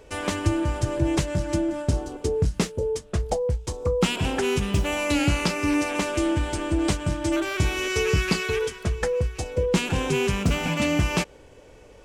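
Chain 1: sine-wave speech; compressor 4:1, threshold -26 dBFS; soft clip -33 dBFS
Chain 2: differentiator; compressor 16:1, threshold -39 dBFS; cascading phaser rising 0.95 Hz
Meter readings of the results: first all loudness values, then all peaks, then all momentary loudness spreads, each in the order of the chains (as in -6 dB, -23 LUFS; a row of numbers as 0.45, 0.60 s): -37.5, -43.5 LUFS; -33.0, -22.5 dBFS; 4, 4 LU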